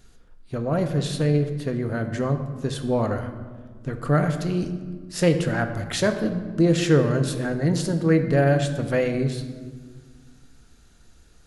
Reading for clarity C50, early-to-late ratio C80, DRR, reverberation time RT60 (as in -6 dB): 9.5 dB, 10.5 dB, 6.0 dB, 1.6 s